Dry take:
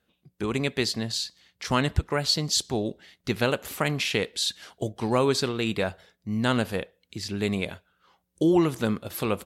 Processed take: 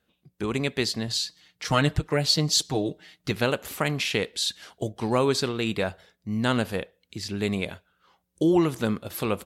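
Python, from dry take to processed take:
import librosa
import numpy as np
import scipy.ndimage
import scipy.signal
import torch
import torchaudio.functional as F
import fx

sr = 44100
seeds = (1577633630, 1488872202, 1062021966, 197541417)

y = fx.comb(x, sr, ms=6.5, depth=0.72, at=(1.07, 3.31))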